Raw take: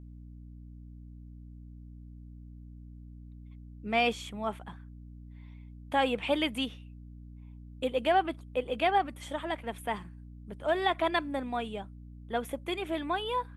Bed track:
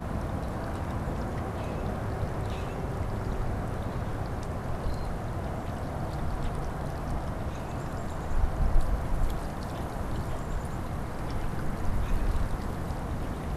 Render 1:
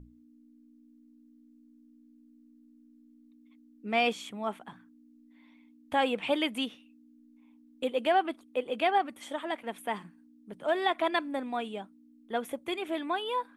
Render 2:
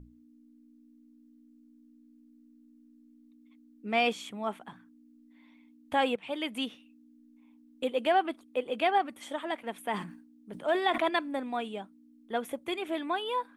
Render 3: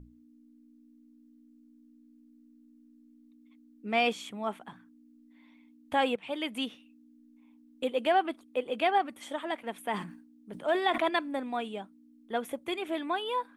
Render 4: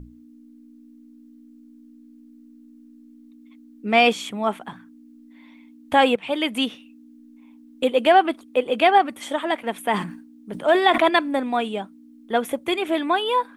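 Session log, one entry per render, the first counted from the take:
notches 60/120/180 Hz
6.16–6.69 fade in, from -15.5 dB; 9.84–11.09 sustainer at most 86 dB/s
nothing audible
gain +10.5 dB

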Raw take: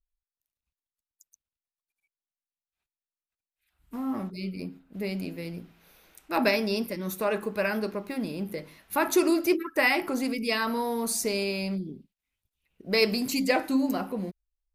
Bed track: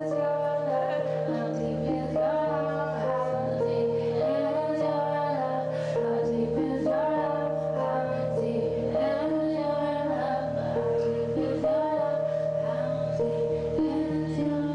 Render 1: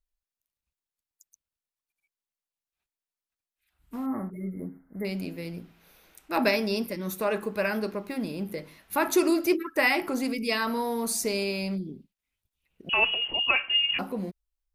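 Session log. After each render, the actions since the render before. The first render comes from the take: 4.06–5.05 brick-wall FIR band-stop 2200–9500 Hz; 12.89–13.99 inverted band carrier 3100 Hz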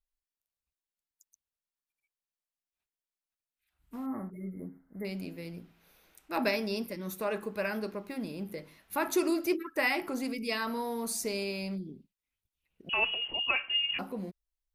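gain -5.5 dB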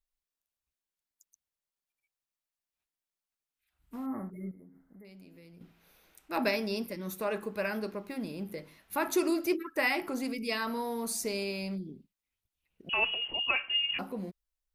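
4.51–5.61 compressor 4:1, threshold -53 dBFS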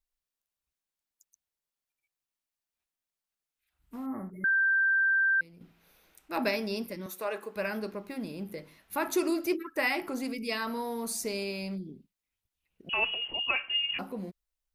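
4.44–5.41 bleep 1570 Hz -22 dBFS; 7.06–7.56 HPF 400 Hz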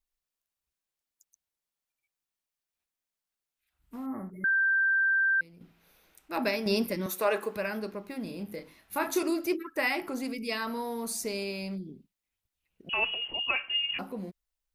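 6.66–7.57 gain +7 dB; 8.23–9.23 doubler 29 ms -6 dB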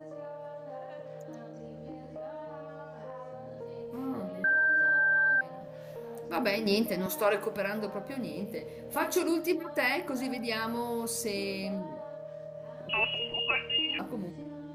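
add bed track -15.5 dB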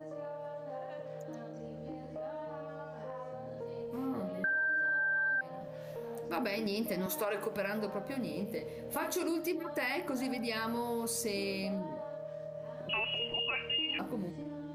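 limiter -22 dBFS, peak gain reduction 7.5 dB; compressor 2.5:1, threshold -32 dBFS, peak gain reduction 5 dB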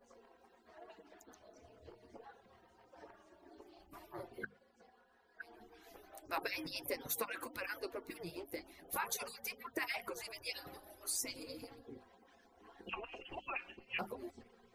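median-filter separation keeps percussive; notches 50/100/150/200/250/300 Hz

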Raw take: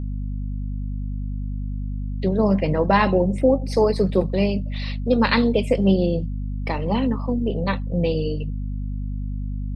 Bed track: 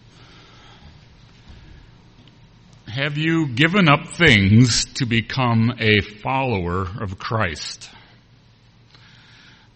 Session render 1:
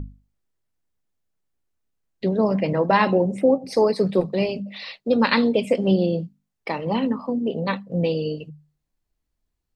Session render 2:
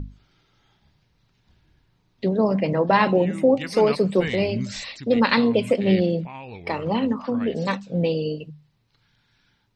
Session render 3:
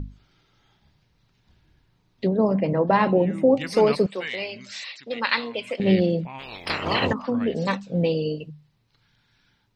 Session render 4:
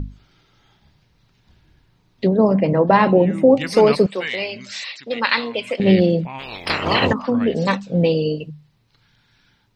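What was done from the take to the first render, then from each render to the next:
notches 50/100/150/200/250 Hz
add bed track -17.5 dB
2.27–3.51 high shelf 2100 Hz -9.5 dB; 4.06–5.8 band-pass 2600 Hz, Q 0.61; 6.38–7.12 spectral limiter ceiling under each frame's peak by 27 dB
gain +5.5 dB; limiter -3 dBFS, peak gain reduction 2 dB

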